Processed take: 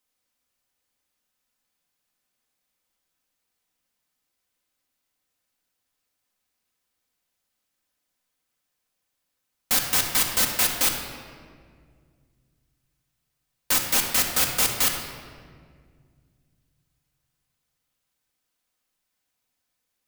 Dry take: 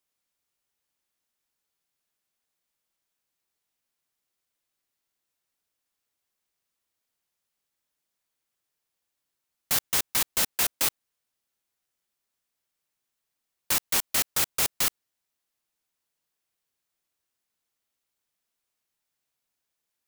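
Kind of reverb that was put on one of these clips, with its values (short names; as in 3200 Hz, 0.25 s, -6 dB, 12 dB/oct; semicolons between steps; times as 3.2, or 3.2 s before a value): shoebox room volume 3200 m³, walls mixed, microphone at 2 m; gain +2 dB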